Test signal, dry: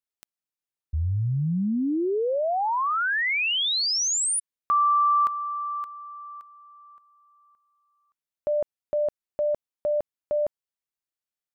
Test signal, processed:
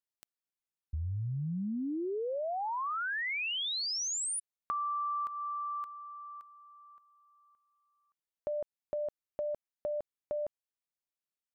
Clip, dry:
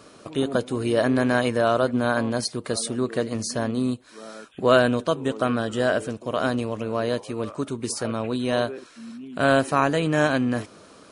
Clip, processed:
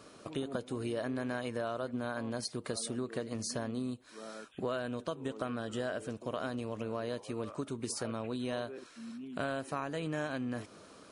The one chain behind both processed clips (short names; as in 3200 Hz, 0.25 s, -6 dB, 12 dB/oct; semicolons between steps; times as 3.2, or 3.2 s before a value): compressor 6:1, threshold -27 dBFS; gain -6 dB